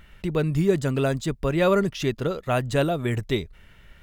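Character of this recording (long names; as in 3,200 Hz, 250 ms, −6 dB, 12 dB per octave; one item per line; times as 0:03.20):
background noise floor −52 dBFS
spectral slope −6.0 dB per octave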